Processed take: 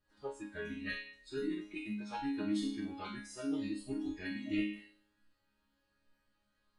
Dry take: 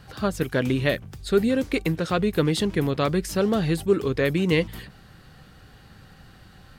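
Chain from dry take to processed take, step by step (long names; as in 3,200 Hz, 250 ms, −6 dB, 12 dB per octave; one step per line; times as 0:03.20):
phase-vocoder pitch shift with formants kept −7 semitones
resonators tuned to a chord G#3 sus4, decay 0.78 s
noise reduction from a noise print of the clip's start 12 dB
level +8 dB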